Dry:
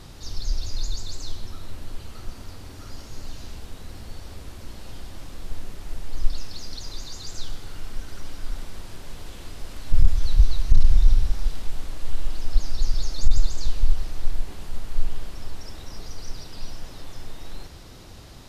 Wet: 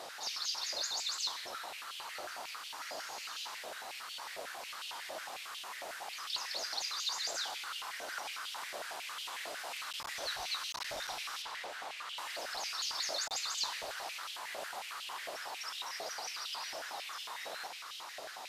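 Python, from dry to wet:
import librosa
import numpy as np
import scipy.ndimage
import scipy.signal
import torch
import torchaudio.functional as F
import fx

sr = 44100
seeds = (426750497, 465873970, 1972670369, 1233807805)

y = fx.lowpass(x, sr, hz=3900.0, slope=6, at=(11.42, 12.18))
y = fx.filter_held_highpass(y, sr, hz=11.0, low_hz=620.0, high_hz=3000.0)
y = F.gain(torch.from_numpy(y), 1.0).numpy()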